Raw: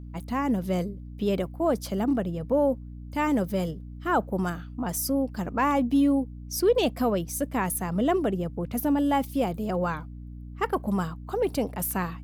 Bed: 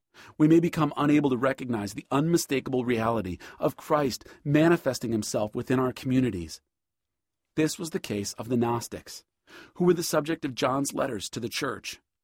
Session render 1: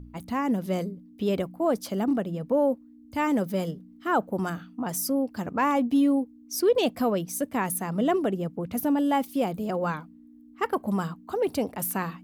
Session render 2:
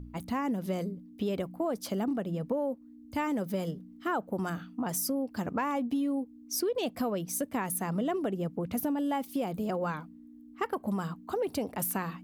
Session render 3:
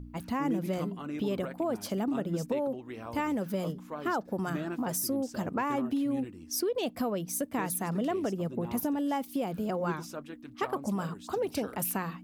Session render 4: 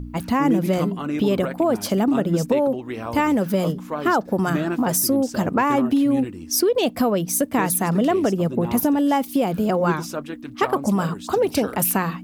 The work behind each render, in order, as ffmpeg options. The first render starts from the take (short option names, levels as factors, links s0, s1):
-af "bandreject=f=60:t=h:w=4,bandreject=f=120:t=h:w=4,bandreject=f=180:t=h:w=4"
-af "acompressor=threshold=0.0398:ratio=6"
-filter_complex "[1:a]volume=0.158[s0];[0:a][s0]amix=inputs=2:normalize=0"
-af "volume=3.76"